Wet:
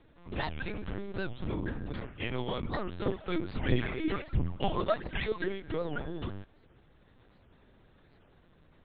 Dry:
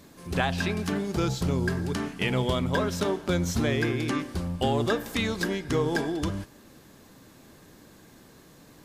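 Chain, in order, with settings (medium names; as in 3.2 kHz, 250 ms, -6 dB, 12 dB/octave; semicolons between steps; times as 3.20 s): 3.07–5.52 s: phaser 1.5 Hz, delay 3.3 ms, feedback 79%; LPC vocoder at 8 kHz pitch kept; warped record 78 rpm, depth 250 cents; trim -8 dB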